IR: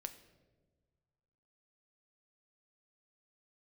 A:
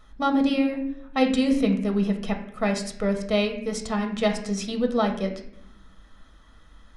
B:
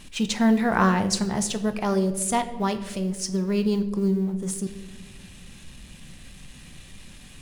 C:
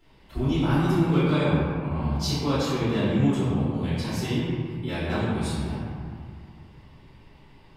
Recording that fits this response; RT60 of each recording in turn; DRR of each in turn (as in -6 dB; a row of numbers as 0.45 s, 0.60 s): B; 0.70 s, 1.5 s, 2.1 s; 3.0 dB, 8.5 dB, -14.5 dB